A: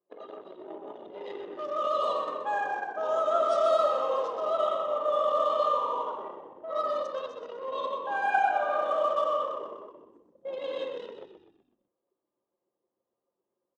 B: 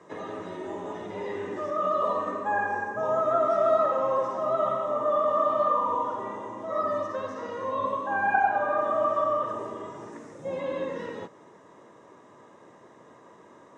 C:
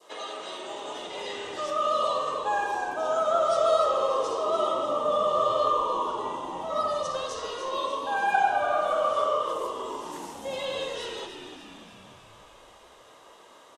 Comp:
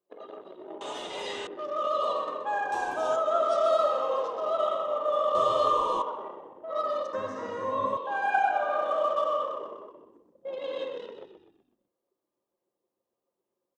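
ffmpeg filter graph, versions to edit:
-filter_complex "[2:a]asplit=3[s0][s1][s2];[0:a]asplit=5[s3][s4][s5][s6][s7];[s3]atrim=end=0.812[s8];[s0]atrim=start=0.808:end=1.472[s9];[s4]atrim=start=1.468:end=2.722[s10];[s1]atrim=start=2.718:end=3.162[s11];[s5]atrim=start=3.158:end=5.352[s12];[s2]atrim=start=5.348:end=6.022[s13];[s6]atrim=start=6.018:end=7.132[s14];[1:a]atrim=start=7.128:end=7.972[s15];[s7]atrim=start=7.968[s16];[s8][s9]acrossfade=d=0.004:c1=hsin:c2=hsin[s17];[s17][s10]acrossfade=d=0.004:c1=hsin:c2=hsin[s18];[s18][s11]acrossfade=d=0.004:c1=hsin:c2=hsin[s19];[s19][s12]acrossfade=d=0.004:c1=hsin:c2=hsin[s20];[s20][s13]acrossfade=d=0.004:c1=hsin:c2=hsin[s21];[s21][s14]acrossfade=d=0.004:c1=hsin:c2=hsin[s22];[s22][s15]acrossfade=d=0.004:c1=hsin:c2=hsin[s23];[s23][s16]acrossfade=d=0.004:c1=hsin:c2=hsin"

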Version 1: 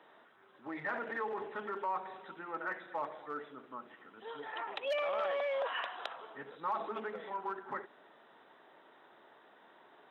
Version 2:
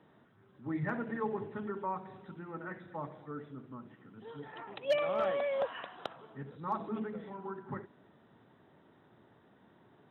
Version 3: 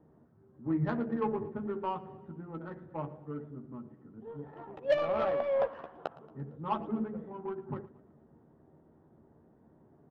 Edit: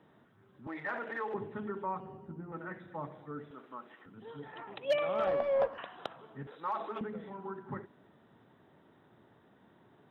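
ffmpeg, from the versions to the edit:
-filter_complex "[0:a]asplit=3[s0][s1][s2];[2:a]asplit=2[s3][s4];[1:a]asplit=6[s5][s6][s7][s8][s9][s10];[s5]atrim=end=0.672[s11];[s0]atrim=start=0.668:end=1.342[s12];[s6]atrim=start=1.338:end=2.002[s13];[s3]atrim=start=1.998:end=2.522[s14];[s7]atrim=start=2.518:end=3.512[s15];[s1]atrim=start=3.508:end=4.062[s16];[s8]atrim=start=4.058:end=5.272[s17];[s4]atrim=start=5.268:end=5.782[s18];[s9]atrim=start=5.778:end=6.472[s19];[s2]atrim=start=6.468:end=7.012[s20];[s10]atrim=start=7.008[s21];[s11][s12]acrossfade=d=0.004:c1=hsin:c2=hsin[s22];[s22][s13]acrossfade=d=0.004:c1=hsin:c2=hsin[s23];[s23][s14]acrossfade=d=0.004:c1=hsin:c2=hsin[s24];[s24][s15]acrossfade=d=0.004:c1=hsin:c2=hsin[s25];[s25][s16]acrossfade=d=0.004:c1=hsin:c2=hsin[s26];[s26][s17]acrossfade=d=0.004:c1=hsin:c2=hsin[s27];[s27][s18]acrossfade=d=0.004:c1=hsin:c2=hsin[s28];[s28][s19]acrossfade=d=0.004:c1=hsin:c2=hsin[s29];[s29][s20]acrossfade=d=0.004:c1=hsin:c2=hsin[s30];[s30][s21]acrossfade=d=0.004:c1=hsin:c2=hsin"

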